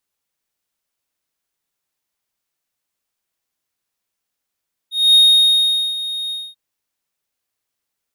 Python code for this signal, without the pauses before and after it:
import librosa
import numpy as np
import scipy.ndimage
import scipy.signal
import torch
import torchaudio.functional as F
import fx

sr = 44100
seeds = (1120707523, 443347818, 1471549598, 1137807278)

y = fx.adsr_tone(sr, wave='triangle', hz=3720.0, attack_ms=234.0, decay_ms=804.0, sustain_db=-15.0, held_s=1.4, release_ms=237.0, level_db=-4.5)